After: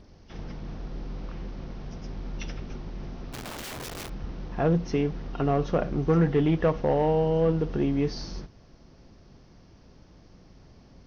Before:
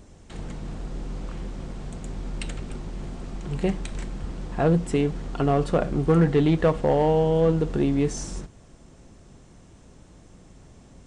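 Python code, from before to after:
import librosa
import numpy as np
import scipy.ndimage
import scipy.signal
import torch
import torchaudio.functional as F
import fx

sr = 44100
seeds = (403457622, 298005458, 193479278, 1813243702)

y = fx.freq_compress(x, sr, knee_hz=2700.0, ratio=1.5)
y = fx.overflow_wrap(y, sr, gain_db=30.0, at=(3.32, 4.08), fade=0.02)
y = F.gain(torch.from_numpy(y), -3.0).numpy()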